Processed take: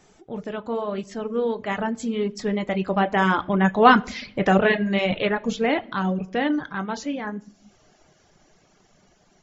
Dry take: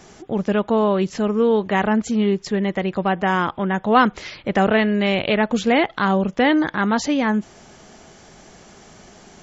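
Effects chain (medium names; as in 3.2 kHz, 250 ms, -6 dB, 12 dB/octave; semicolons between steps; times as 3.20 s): Doppler pass-by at 3.81 s, 11 m/s, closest 11 m; simulated room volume 120 m³, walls mixed, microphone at 0.41 m; reverb removal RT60 0.73 s; trim +1 dB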